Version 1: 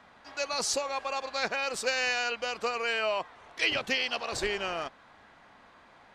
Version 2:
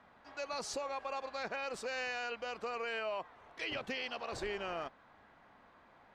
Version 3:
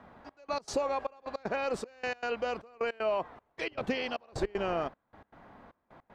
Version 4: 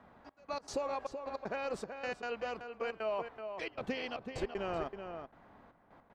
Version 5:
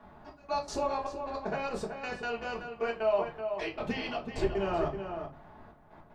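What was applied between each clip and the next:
treble shelf 2.9 kHz -10.5 dB; peak limiter -24.5 dBFS, peak gain reduction 7 dB; trim -4.5 dB
tilt shelf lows +5.5 dB; trance gate "xxx..x.x" 155 bpm -24 dB; trim +7 dB
echo from a far wall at 65 m, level -7 dB; trim -5.5 dB
reverberation RT60 0.30 s, pre-delay 3 ms, DRR -3.5 dB

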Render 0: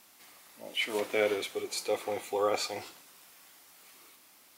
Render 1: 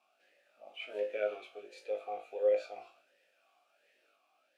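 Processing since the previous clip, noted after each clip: on a send: flutter echo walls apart 3.3 m, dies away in 0.22 s; on the sum: talking filter a-e 1.4 Hz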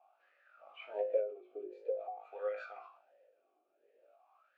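wah-wah 0.48 Hz 350–1400 Hz, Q 5.8; endings held to a fixed fall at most 110 dB/s; trim +14 dB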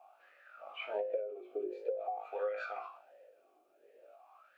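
compression 12:1, threshold -40 dBFS, peak gain reduction 14.5 dB; trim +8 dB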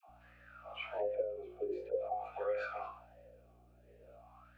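hum 60 Hz, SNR 23 dB; phase dispersion lows, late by 93 ms, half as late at 560 Hz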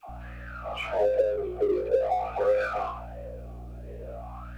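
companding laws mixed up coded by mu; tilt EQ -2 dB/octave; trim +8.5 dB

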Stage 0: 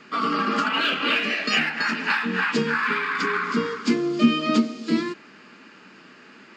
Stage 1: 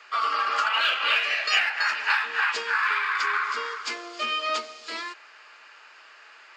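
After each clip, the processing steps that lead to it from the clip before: high-pass 630 Hz 24 dB/octave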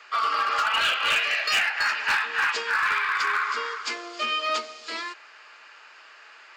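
hard clipper -18.5 dBFS, distortion -17 dB; trim +1 dB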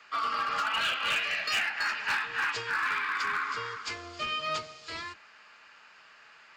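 octave divider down 2 oct, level 0 dB; trim -6 dB

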